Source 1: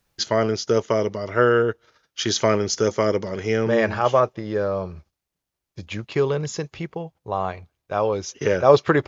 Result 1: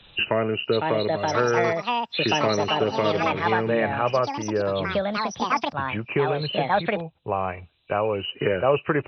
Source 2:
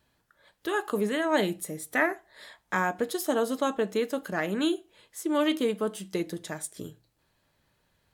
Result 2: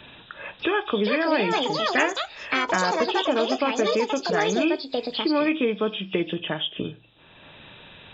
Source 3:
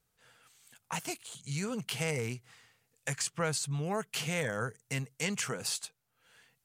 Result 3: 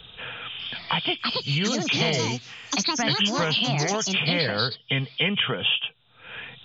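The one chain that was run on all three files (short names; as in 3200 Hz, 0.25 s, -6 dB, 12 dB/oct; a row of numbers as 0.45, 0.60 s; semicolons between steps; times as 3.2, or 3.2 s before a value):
nonlinear frequency compression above 2300 Hz 4:1; echoes that change speed 0.595 s, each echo +6 st, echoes 2; three-band squash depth 70%; match loudness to -24 LUFS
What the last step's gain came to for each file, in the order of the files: -4.0, +3.0, +7.5 dB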